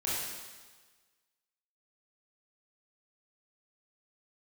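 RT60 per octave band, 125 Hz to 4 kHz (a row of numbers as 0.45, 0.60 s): 1.3, 1.3, 1.4, 1.4, 1.4, 1.4 s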